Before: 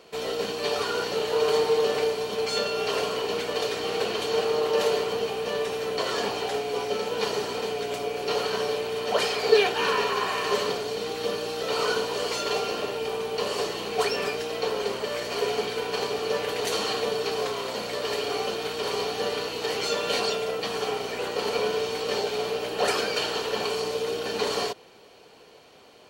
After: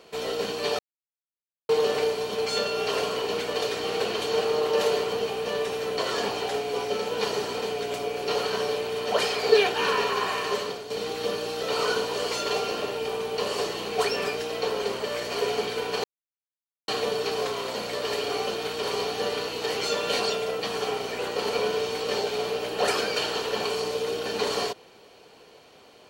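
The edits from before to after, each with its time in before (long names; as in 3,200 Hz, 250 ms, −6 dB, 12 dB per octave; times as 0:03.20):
0:00.79–0:01.69: silence
0:10.31–0:10.90: fade out, to −9 dB
0:16.04–0:16.88: silence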